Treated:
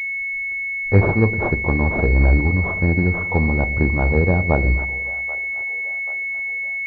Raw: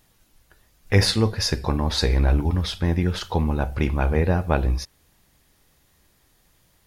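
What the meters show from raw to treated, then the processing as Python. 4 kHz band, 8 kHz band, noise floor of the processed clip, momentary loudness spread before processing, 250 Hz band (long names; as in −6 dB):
below −25 dB, below −25 dB, −25 dBFS, 5 LU, +4.0 dB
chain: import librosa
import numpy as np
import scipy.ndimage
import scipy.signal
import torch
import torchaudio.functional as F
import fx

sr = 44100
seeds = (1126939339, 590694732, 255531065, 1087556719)

y = fx.echo_split(x, sr, split_hz=560.0, low_ms=122, high_ms=784, feedback_pct=52, wet_db=-14.5)
y = fx.pwm(y, sr, carrier_hz=2200.0)
y = F.gain(torch.from_numpy(y), 3.5).numpy()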